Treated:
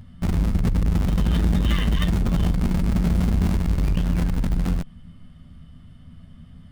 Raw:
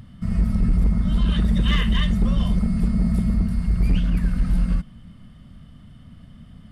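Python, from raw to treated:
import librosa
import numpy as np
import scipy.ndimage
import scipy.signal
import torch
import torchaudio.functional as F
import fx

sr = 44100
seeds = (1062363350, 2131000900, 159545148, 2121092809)

p1 = fx.low_shelf(x, sr, hz=95.0, db=5.0)
p2 = fx.schmitt(p1, sr, flips_db=-27.5)
p3 = p1 + (p2 * librosa.db_to_amplitude(-5.0))
p4 = fx.doubler(p3, sr, ms=12.0, db=-6.5)
p5 = fx.transformer_sat(p4, sr, knee_hz=100.0)
y = p5 * librosa.db_to_amplitude(-3.5)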